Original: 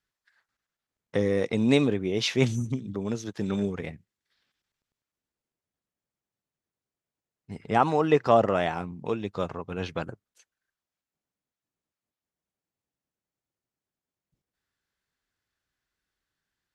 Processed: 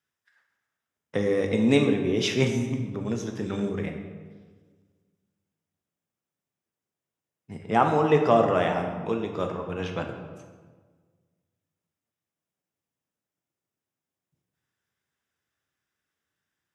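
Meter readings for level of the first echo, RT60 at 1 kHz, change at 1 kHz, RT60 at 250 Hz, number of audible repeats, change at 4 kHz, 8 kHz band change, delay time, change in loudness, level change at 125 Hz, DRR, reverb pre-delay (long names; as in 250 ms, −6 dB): no echo audible, 1.4 s, +1.5 dB, 1.8 s, no echo audible, 0.0 dB, can't be measured, no echo audible, +1.0 dB, +1.0 dB, 3.5 dB, 9 ms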